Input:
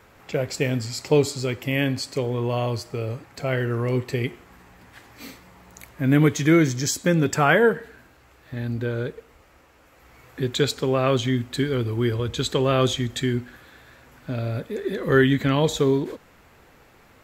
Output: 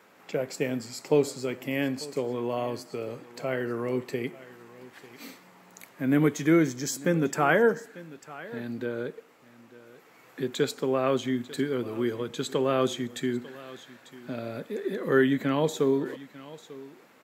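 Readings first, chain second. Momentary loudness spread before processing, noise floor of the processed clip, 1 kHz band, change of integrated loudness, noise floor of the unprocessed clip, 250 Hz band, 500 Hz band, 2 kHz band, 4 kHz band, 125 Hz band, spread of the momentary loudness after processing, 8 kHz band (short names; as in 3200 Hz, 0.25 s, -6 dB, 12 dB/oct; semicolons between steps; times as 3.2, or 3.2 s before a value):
13 LU, -56 dBFS, -4.5 dB, -5.0 dB, -55 dBFS, -4.0 dB, -3.5 dB, -5.5 dB, -9.0 dB, -11.5 dB, 21 LU, -6.5 dB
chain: HPF 170 Hz 24 dB/oct; on a send: echo 0.895 s -19.5 dB; on the sum: dynamic EQ 3900 Hz, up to -6 dB, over -42 dBFS, Q 0.7; gain -3.5 dB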